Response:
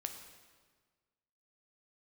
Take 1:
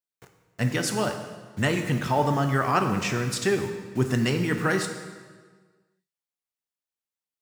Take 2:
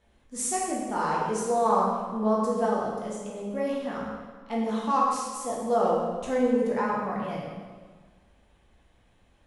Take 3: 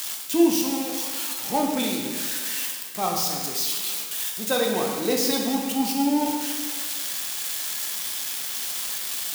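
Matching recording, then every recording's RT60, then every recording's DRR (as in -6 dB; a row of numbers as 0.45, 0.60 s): 1; 1.5, 1.5, 1.5 s; 5.0, -5.0, -0.5 dB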